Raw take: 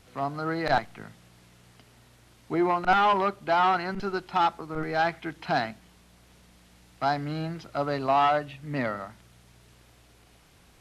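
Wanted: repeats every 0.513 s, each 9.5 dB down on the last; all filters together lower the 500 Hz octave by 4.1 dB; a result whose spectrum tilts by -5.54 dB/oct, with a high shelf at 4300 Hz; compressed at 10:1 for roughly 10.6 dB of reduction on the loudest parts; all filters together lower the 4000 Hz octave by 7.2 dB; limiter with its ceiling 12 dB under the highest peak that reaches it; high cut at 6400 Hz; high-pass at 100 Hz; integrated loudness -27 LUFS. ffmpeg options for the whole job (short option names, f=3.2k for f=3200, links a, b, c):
-af "highpass=100,lowpass=6.4k,equalizer=f=500:t=o:g=-6,equalizer=f=4k:t=o:g=-6.5,highshelf=f=4.3k:g=-5.5,acompressor=threshold=-31dB:ratio=10,alimiter=level_in=9dB:limit=-24dB:level=0:latency=1,volume=-9dB,aecho=1:1:513|1026|1539|2052:0.335|0.111|0.0365|0.012,volume=15dB"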